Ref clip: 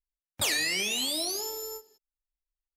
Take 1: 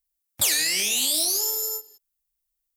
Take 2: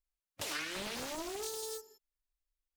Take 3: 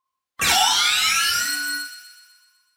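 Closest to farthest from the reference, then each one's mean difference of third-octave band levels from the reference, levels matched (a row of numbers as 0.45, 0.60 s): 1, 2, 3; 5.5, 8.5, 11.0 dB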